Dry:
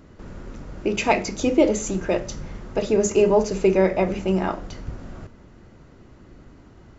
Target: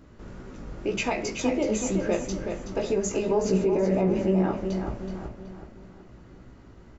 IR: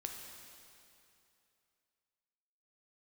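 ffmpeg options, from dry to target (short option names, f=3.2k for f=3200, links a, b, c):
-filter_complex "[0:a]asettb=1/sr,asplit=3[a][b][c];[a]atrim=end=3.454[d];[b]atrim=start=3.45:end=4.55,asetpts=PTS-STARTPTS,afade=t=in:d=0.004:c=qsin,afade=t=out:st=1.096:d=0.004:c=qsin,equalizer=f=260:w=0.41:g=11[e];[c]atrim=start=4.546[f];[d][e]acrossfade=d=0.004:c1=hsin:c2=qsin[g];[g][f]acrossfade=d=0.004:c1=qsin:c2=hsin,alimiter=limit=-13.5dB:level=0:latency=1:release=119,flanger=delay=15.5:depth=2.9:speed=2,asplit=2[h][i];[i]adelay=375,lowpass=f=4.4k:p=1,volume=-6.5dB,asplit=2[j][k];[k]adelay=375,lowpass=f=4.4k:p=1,volume=0.44,asplit=2[l][m];[m]adelay=375,lowpass=f=4.4k:p=1,volume=0.44,asplit=2[n][o];[o]adelay=375,lowpass=f=4.4k:p=1,volume=0.44,asplit=2[p][q];[q]adelay=375,lowpass=f=4.4k:p=1,volume=0.44[r];[h][j][l][n][p][r]amix=inputs=6:normalize=0"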